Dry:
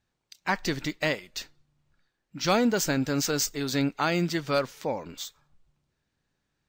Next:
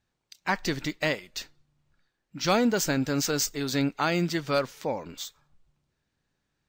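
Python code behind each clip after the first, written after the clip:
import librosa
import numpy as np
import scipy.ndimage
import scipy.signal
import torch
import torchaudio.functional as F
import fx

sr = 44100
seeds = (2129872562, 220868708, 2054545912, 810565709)

y = x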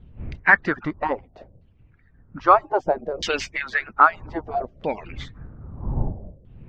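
y = fx.hpss_only(x, sr, part='percussive')
y = fx.dmg_wind(y, sr, seeds[0], corner_hz=99.0, level_db=-40.0)
y = fx.filter_lfo_lowpass(y, sr, shape='saw_down', hz=0.62, low_hz=510.0, high_hz=3200.0, q=5.0)
y = y * librosa.db_to_amplitude(4.5)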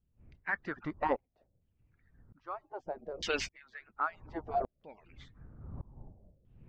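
y = fx.tremolo_decay(x, sr, direction='swelling', hz=0.86, depth_db=27)
y = y * librosa.db_to_amplitude(-4.5)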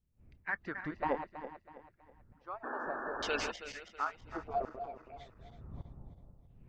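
y = fx.reverse_delay_fb(x, sr, ms=162, feedback_pct=60, wet_db=-8.5)
y = fx.spec_paint(y, sr, seeds[1], shape='noise', start_s=2.63, length_s=0.89, low_hz=220.0, high_hz=1800.0, level_db=-38.0)
y = y * librosa.db_to_amplitude(-2.5)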